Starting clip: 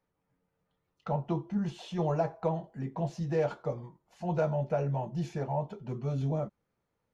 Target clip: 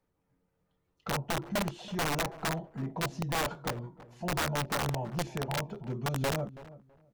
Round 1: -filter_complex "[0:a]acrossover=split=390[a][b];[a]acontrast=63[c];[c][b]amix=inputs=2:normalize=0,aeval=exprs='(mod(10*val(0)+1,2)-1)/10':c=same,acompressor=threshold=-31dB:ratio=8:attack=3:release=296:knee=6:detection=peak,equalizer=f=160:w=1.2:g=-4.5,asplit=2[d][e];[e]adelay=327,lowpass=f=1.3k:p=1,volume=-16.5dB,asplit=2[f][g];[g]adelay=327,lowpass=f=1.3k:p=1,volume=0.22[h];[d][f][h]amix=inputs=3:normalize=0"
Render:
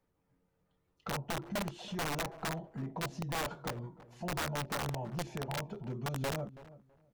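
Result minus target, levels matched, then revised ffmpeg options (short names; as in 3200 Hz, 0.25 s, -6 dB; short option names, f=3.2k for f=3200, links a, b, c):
compressor: peak gain reduction +5 dB
-filter_complex "[0:a]acrossover=split=390[a][b];[a]acontrast=63[c];[c][b]amix=inputs=2:normalize=0,aeval=exprs='(mod(10*val(0)+1,2)-1)/10':c=same,acompressor=threshold=-25dB:ratio=8:attack=3:release=296:knee=6:detection=peak,equalizer=f=160:w=1.2:g=-4.5,asplit=2[d][e];[e]adelay=327,lowpass=f=1.3k:p=1,volume=-16.5dB,asplit=2[f][g];[g]adelay=327,lowpass=f=1.3k:p=1,volume=0.22[h];[d][f][h]amix=inputs=3:normalize=0"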